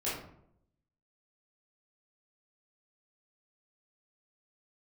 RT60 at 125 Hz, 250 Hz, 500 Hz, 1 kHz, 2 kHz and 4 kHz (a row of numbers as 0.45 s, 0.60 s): 0.95 s, 0.90 s, 0.75 s, 0.65 s, 0.50 s, 0.35 s